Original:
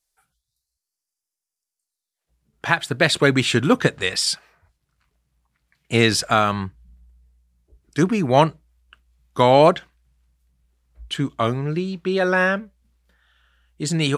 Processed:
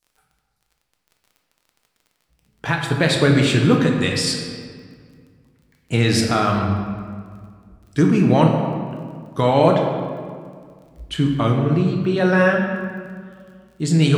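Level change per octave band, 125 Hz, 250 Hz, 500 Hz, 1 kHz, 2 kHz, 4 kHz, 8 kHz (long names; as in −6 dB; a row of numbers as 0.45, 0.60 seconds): +6.5, +5.0, +0.5, −1.5, −1.0, −1.0, −1.5 decibels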